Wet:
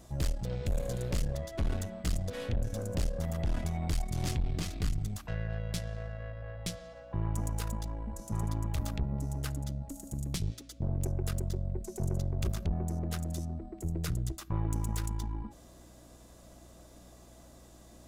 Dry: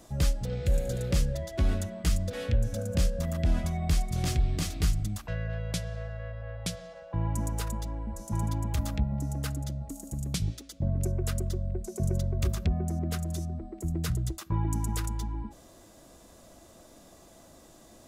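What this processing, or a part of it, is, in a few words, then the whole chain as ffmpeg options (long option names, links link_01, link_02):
valve amplifier with mains hum: -filter_complex "[0:a]aeval=exprs='(tanh(20*val(0)+0.6)-tanh(0.6))/20':channel_layout=same,aeval=exprs='val(0)+0.00158*(sin(2*PI*60*n/s)+sin(2*PI*2*60*n/s)/2+sin(2*PI*3*60*n/s)/3+sin(2*PI*4*60*n/s)/4+sin(2*PI*5*60*n/s)/5)':channel_layout=same,asettb=1/sr,asplit=3[link_01][link_02][link_03];[link_01]atrim=end=4.314[link_04];[link_02]atrim=start=4.31:end=5.01,asetpts=PTS-STARTPTS,afade=type=in:duration=0.004:curve=qsin,afade=type=out:start_time=0.696:duration=0.004:curve=qsin,highshelf=frequency=5800:gain=-6[link_05];[link_03]atrim=start=5.006[link_06];[link_04][link_05]acrossfade=duration=0.004:curve1=hsin:curve2=qsin[link_07];[link_07][link_06]acrossfade=duration=0.004:curve1=qsin:curve2=hsin"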